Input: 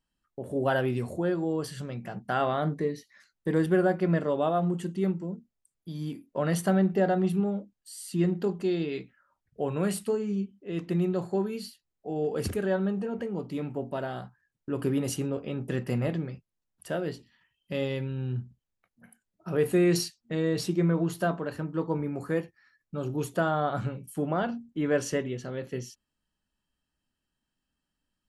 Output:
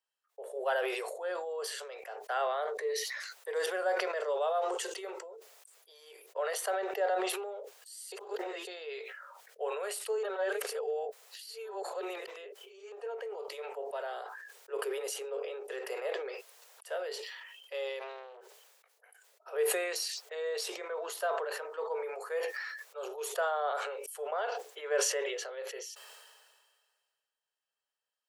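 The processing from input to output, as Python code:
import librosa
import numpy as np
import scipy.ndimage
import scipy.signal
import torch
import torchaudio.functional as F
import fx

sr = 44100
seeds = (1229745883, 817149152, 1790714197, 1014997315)

y = fx.peak_eq(x, sr, hz=5700.0, db=7.5, octaves=0.83, at=(3.55, 4.96))
y = fx.peak_eq(y, sr, hz=390.0, db=6.5, octaves=0.36, at=(14.1, 16.34))
y = fx.tube_stage(y, sr, drive_db=39.0, bias=0.35, at=(17.99, 18.41))
y = fx.edit(y, sr, fx.reverse_span(start_s=8.12, length_s=0.55),
    fx.reverse_span(start_s=10.23, length_s=2.69), tone=tone)
y = scipy.signal.sosfilt(scipy.signal.butter(16, 420.0, 'highpass', fs=sr, output='sos'), y)
y = fx.sustainer(y, sr, db_per_s=32.0)
y = y * 10.0 ** (-4.5 / 20.0)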